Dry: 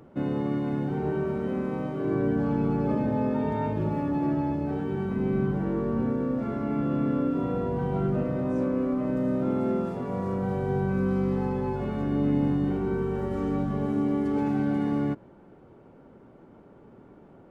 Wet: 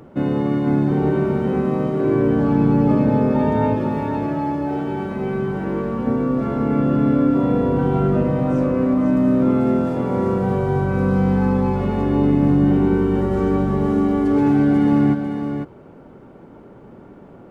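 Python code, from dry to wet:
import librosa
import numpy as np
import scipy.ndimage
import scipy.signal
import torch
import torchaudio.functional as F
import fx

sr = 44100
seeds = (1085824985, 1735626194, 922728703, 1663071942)

y = fx.low_shelf(x, sr, hz=350.0, db=-9.5, at=(3.75, 6.07))
y = y + 10.0 ** (-6.0 / 20.0) * np.pad(y, (int(501 * sr / 1000.0), 0))[:len(y)]
y = y * 10.0 ** (8.0 / 20.0)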